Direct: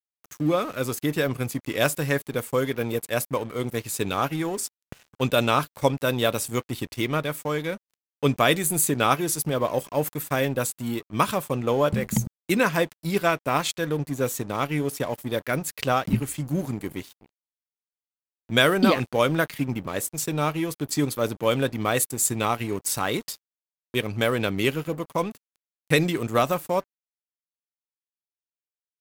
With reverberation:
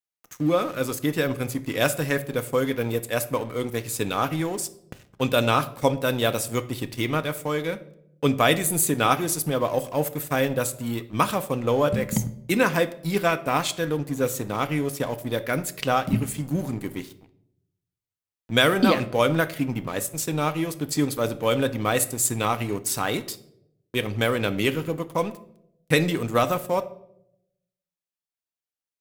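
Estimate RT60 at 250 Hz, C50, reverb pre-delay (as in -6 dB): 0.95 s, 16.0 dB, 4 ms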